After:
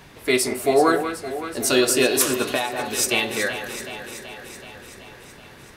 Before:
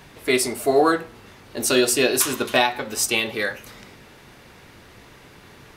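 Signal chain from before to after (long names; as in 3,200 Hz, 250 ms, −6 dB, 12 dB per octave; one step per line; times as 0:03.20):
delay that swaps between a low-pass and a high-pass 189 ms, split 1,900 Hz, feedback 81%, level −9.5 dB
0:02.49–0:02.95: downward compressor 6 to 1, threshold −20 dBFS, peak gain reduction 7.5 dB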